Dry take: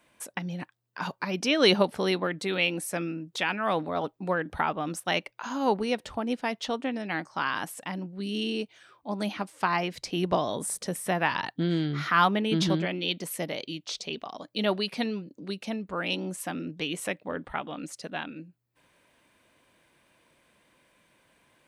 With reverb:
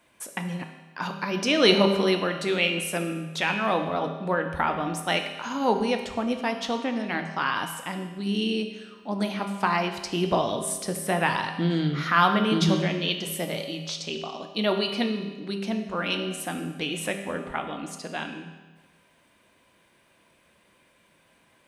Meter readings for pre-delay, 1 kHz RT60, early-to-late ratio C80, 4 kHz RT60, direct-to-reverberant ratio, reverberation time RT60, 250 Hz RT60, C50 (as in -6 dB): 5 ms, 1.3 s, 9.0 dB, 1.2 s, 4.5 dB, 1.3 s, 1.3 s, 7.5 dB